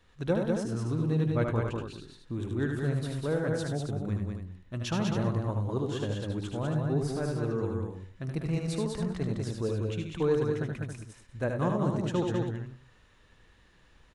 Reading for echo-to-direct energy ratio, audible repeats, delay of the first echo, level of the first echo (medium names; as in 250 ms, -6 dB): 0.0 dB, 4, 76 ms, -5.0 dB